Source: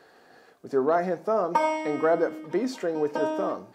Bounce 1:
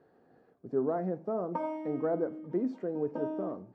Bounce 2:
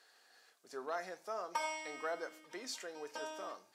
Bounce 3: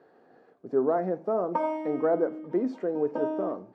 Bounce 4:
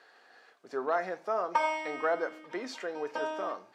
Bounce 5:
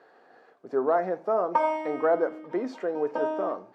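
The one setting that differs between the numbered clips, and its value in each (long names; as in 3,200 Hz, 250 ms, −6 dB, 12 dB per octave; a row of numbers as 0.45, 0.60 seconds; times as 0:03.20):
resonant band-pass, frequency: 120, 7,800, 290, 2,400, 750 Hertz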